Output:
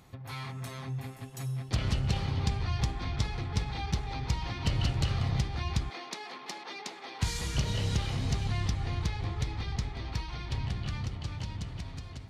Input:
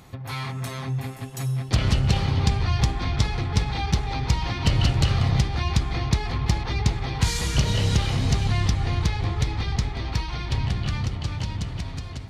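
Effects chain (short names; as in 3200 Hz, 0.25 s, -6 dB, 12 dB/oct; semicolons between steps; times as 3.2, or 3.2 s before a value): 5.9–7.22 Bessel high-pass 400 Hz, order 8; gain -8.5 dB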